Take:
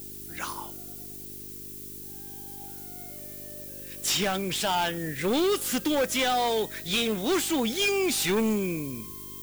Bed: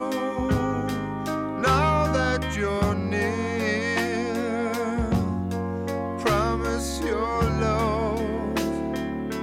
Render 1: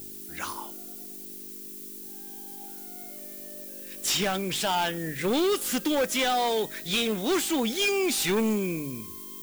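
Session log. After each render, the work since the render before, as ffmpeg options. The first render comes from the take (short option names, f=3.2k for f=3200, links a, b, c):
-af "bandreject=f=50:t=h:w=4,bandreject=f=100:t=h:w=4,bandreject=f=150:t=h:w=4"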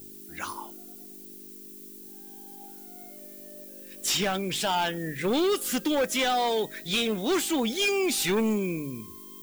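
-af "afftdn=nr=6:nf=-42"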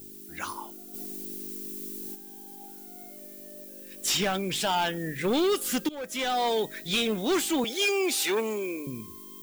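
-filter_complex "[0:a]asplit=3[a][b][c];[a]afade=t=out:st=0.93:d=0.02[d];[b]acontrast=87,afade=t=in:st=0.93:d=0.02,afade=t=out:st=2.14:d=0.02[e];[c]afade=t=in:st=2.14:d=0.02[f];[d][e][f]amix=inputs=3:normalize=0,asettb=1/sr,asplit=3[g][h][i];[g]atrim=end=7.644[j];[h]atrim=start=7.64:end=8.87,asetpts=PTS-STARTPTS,afade=t=in:d=0.004:c=qsin,afade=t=out:st=1.226:d=0.004:c=qsin,highpass=f=300:w=0.5412,highpass=f=300:w=1.3066[k];[i]atrim=start=8.866[l];[j][k]acrossfade=d=0.004:c1=hsin:c2=qsin[m];[m][l]acrossfade=d=0.004:c1=qsin:c2=hsin,asplit=2[n][o];[n]atrim=end=5.89,asetpts=PTS-STARTPTS,afade=t=out:st=5.886:d=0.004:c=hsin:silence=0.0944061[p];[o]atrim=start=5.89,asetpts=PTS-STARTPTS,afade=t=in:d=0.58:silence=0.0944061[q];[p][q]concat=n=2:v=0:a=1"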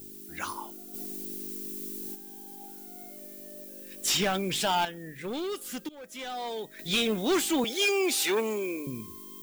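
-filter_complex "[0:a]asplit=3[a][b][c];[a]atrim=end=4.852[d];[b]atrim=start=4.848:end=6.792,asetpts=PTS-STARTPTS,volume=-9dB[e];[c]atrim=start=6.788[f];[d][e]acrossfade=d=0.004:c1=hsin:c2=hsin[g];[g][f]acrossfade=d=0.004:c1=hsin:c2=hsin"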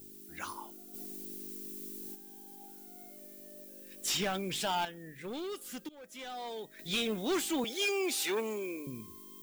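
-af "volume=-6dB"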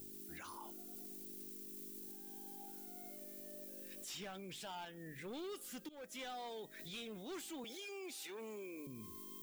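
-af "acompressor=threshold=-44dB:ratio=2.5,alimiter=level_in=17.5dB:limit=-24dB:level=0:latency=1:release=12,volume=-17.5dB"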